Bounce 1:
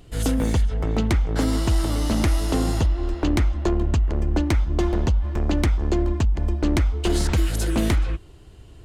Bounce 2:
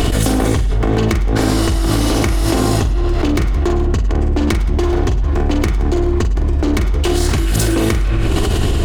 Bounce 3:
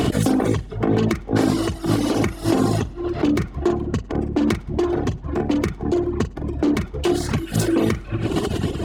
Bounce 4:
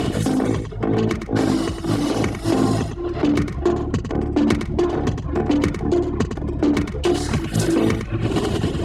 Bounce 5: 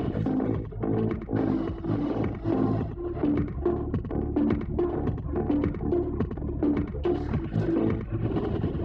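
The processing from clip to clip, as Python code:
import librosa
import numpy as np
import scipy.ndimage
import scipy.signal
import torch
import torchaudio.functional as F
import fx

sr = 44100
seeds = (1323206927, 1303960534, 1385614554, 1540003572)

y1 = fx.lower_of_two(x, sr, delay_ms=2.7)
y1 = fx.echo_multitap(y1, sr, ms=(45, 100, 108, 171), db=(-6.5, -19.5, -13.5, -19.5))
y1 = fx.env_flatten(y1, sr, amount_pct=100)
y1 = y1 * 10.0 ** (2.0 / 20.0)
y2 = scipy.signal.sosfilt(scipy.signal.cheby1(2, 1.0, 160.0, 'highpass', fs=sr, output='sos'), y1)
y2 = fx.dereverb_blind(y2, sr, rt60_s=1.3)
y2 = fx.tilt_eq(y2, sr, slope=-1.5)
y2 = y2 * 10.0 ** (-2.0 / 20.0)
y3 = y2 + 10.0 ** (-8.0 / 20.0) * np.pad(y2, (int(107 * sr / 1000.0), 0))[:len(y2)]
y3 = fx.rider(y3, sr, range_db=10, speed_s=2.0)
y3 = scipy.signal.sosfilt(scipy.signal.butter(2, 11000.0, 'lowpass', fs=sr, output='sos'), y3)
y4 = fx.spacing_loss(y3, sr, db_at_10k=44)
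y4 = y4 * 10.0 ** (-5.5 / 20.0)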